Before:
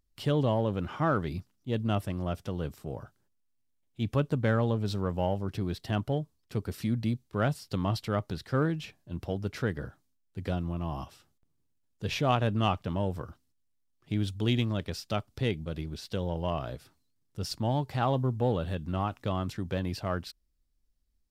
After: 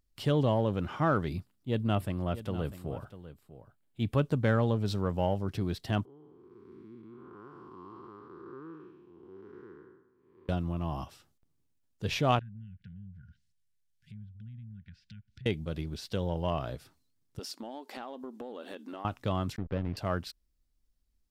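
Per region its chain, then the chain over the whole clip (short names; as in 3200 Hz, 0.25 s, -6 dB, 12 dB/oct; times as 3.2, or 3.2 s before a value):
1.35–4.17 bell 5900 Hz -9 dB 0.39 oct + echo 0.647 s -14 dB
6.05–10.49 time blur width 0.382 s + double band-pass 620 Hz, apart 1.5 oct
12.39–15.46 brick-wall FIR band-stop 230–1400 Hz + compressor 2:1, threshold -56 dBFS + treble ducked by the level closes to 750 Hz, closed at -42.5 dBFS
17.39–19.05 brick-wall FIR high-pass 210 Hz + compressor 12:1, threshold -37 dBFS
19.56–19.97 backlash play -31.5 dBFS + air absorption 300 m
whole clip: dry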